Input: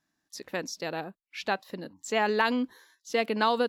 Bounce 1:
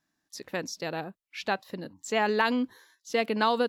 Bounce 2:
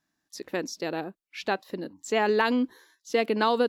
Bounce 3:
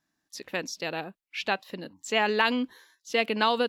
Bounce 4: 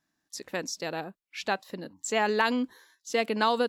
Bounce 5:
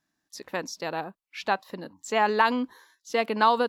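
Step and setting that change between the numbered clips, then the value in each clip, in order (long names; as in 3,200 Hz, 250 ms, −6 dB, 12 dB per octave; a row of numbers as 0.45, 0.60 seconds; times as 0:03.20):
dynamic equaliser, frequency: 110, 340, 2,800, 7,900, 1,000 Hertz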